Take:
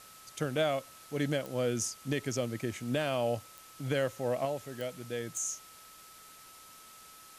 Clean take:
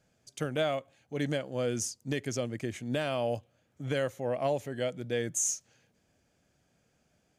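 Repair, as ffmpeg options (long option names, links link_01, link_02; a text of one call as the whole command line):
ffmpeg -i in.wav -af "adeclick=threshold=4,bandreject=frequency=1300:width=30,afwtdn=0.0022,asetnsamples=nb_out_samples=441:pad=0,asendcmd='4.45 volume volume 5.5dB',volume=0dB" out.wav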